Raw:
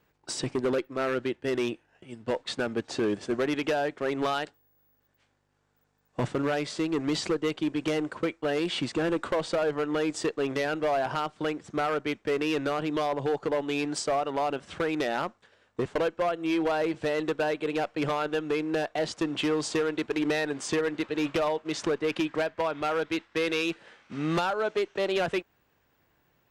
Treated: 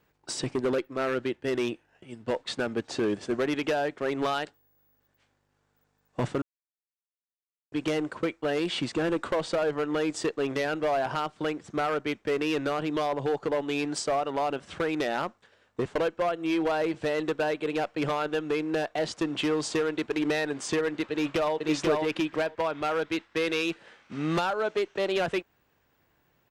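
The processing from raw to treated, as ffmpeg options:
-filter_complex "[0:a]asplit=2[s0][s1];[s1]afade=t=in:st=21.11:d=0.01,afade=t=out:st=21.57:d=0.01,aecho=0:1:490|980:0.794328|0.0794328[s2];[s0][s2]amix=inputs=2:normalize=0,asplit=3[s3][s4][s5];[s3]atrim=end=6.42,asetpts=PTS-STARTPTS,afade=t=out:st=6.416:d=0.004:c=hsin[s6];[s4]atrim=start=6.42:end=7.72,asetpts=PTS-STARTPTS,volume=0[s7];[s5]atrim=start=7.72,asetpts=PTS-STARTPTS,afade=t=in:d=0.004:c=hsin[s8];[s6][s7][s8]concat=n=3:v=0:a=1"

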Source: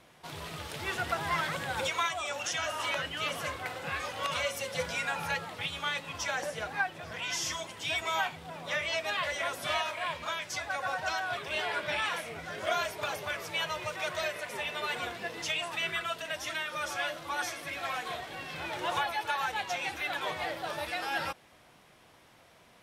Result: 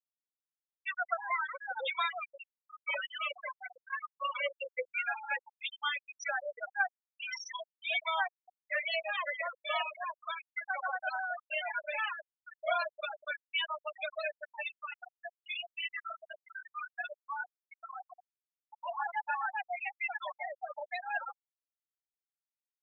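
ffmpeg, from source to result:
-filter_complex "[0:a]asettb=1/sr,asplit=3[s0][s1][s2];[s0]atrim=end=2.244[s3];[s1]atrim=start=2.24:end=2.88,asetpts=PTS-STARTPTS,afade=t=in:d=0.004:c=qsin,afade=t=out:st=0.636:d=0.004:c=qsin,aeval=exprs='0.0188*(abs(mod(val(0)/0.0188+3,4)-2)-1)':c=same[s4];[s2]atrim=start=2.876[s5];[s3][s4]acrossfade=d=0.004:c1=hsin:c2=qsin[s6];[s6][s5]acrossfade=d=0.004:c1=qsin:c2=hsin,asplit=3[s7][s8][s9];[s7]afade=t=out:st=14.72:d=0.02[s10];[s8]flanger=delay=16:depth=7.9:speed=1.7,afade=t=in:st=14.72:d=0.02,afade=t=out:st=19.04:d=0.02[s11];[s9]afade=t=in:st=19.04:d=0.02[s12];[s10][s11][s12]amix=inputs=3:normalize=0,highpass=510,afftfilt=real='re*gte(hypot(re,im),0.0794)':imag='im*gte(hypot(re,im),0.0794)':win_size=1024:overlap=0.75,adynamicequalizer=threshold=0.00447:dfrequency=1000:dqfactor=1.1:tfrequency=1000:tqfactor=1.1:attack=5:release=100:ratio=0.375:range=2:mode=cutabove:tftype=bell,volume=1.19"

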